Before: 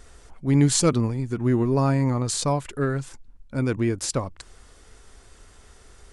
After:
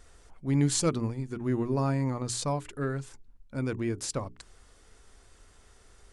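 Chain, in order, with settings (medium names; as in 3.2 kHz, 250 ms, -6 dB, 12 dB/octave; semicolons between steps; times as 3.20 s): hum notches 60/120/180/240/300/360/420 Hz; trim -6.5 dB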